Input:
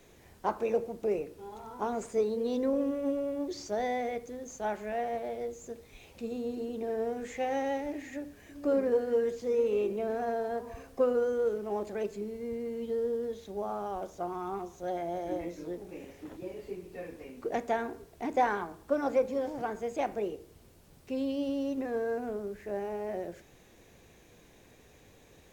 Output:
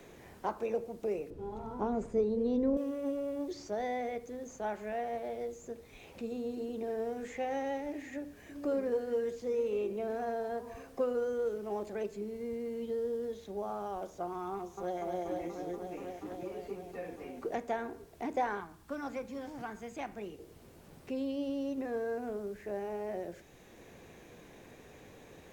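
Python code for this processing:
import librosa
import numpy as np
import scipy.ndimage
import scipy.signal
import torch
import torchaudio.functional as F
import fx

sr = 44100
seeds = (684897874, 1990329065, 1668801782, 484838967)

y = fx.tilt_eq(x, sr, slope=-4.0, at=(1.3, 2.77))
y = fx.echo_throw(y, sr, start_s=14.53, length_s=0.46, ms=240, feedback_pct=85, wet_db=-5.5)
y = fx.peak_eq(y, sr, hz=510.0, db=-12.0, octaves=1.4, at=(18.6, 20.39))
y = fx.band_squash(y, sr, depth_pct=40)
y = y * 10.0 ** (-3.5 / 20.0)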